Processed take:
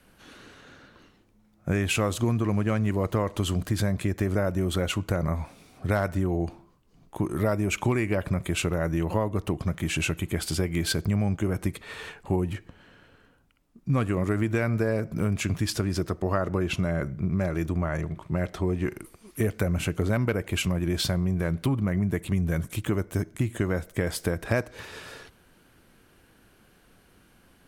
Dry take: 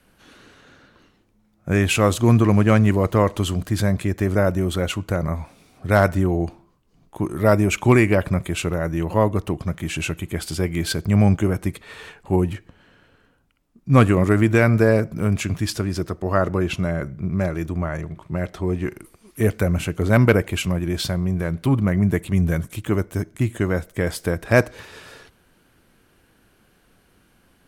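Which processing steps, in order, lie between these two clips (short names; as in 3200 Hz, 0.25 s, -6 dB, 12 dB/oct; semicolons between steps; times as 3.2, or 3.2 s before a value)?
compressor 6:1, threshold -22 dBFS, peak gain reduction 13 dB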